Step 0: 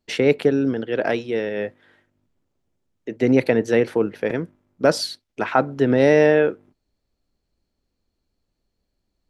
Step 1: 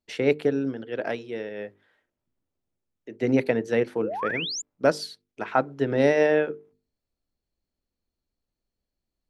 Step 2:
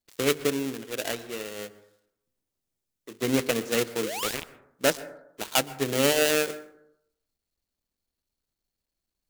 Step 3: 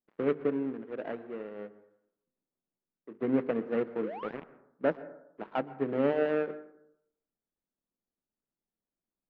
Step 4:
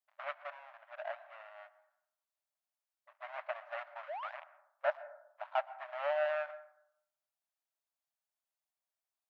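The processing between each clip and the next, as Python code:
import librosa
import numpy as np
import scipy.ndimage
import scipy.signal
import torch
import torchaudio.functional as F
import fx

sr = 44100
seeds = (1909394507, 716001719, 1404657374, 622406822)

y1 = fx.hum_notches(x, sr, base_hz=50, count=9)
y1 = fx.spec_paint(y1, sr, seeds[0], shape='rise', start_s=4.01, length_s=0.61, low_hz=380.0, high_hz=7500.0, level_db=-23.0)
y1 = fx.upward_expand(y1, sr, threshold_db=-25.0, expansion=1.5)
y1 = y1 * 10.0 ** (-3.0 / 20.0)
y2 = fx.dead_time(y1, sr, dead_ms=0.26)
y2 = fx.high_shelf(y2, sr, hz=2700.0, db=12.0)
y2 = fx.rev_plate(y2, sr, seeds[1], rt60_s=0.77, hf_ratio=0.25, predelay_ms=110, drr_db=16.5)
y2 = y2 * 10.0 ** (-3.5 / 20.0)
y3 = scipy.signal.sosfilt(scipy.signal.bessel(4, 1200.0, 'lowpass', norm='mag', fs=sr, output='sos'), y2)
y3 = fx.low_shelf_res(y3, sr, hz=130.0, db=-9.5, q=1.5)
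y3 = y3 * 10.0 ** (-3.5 / 20.0)
y4 = fx.brickwall_highpass(y3, sr, low_hz=570.0)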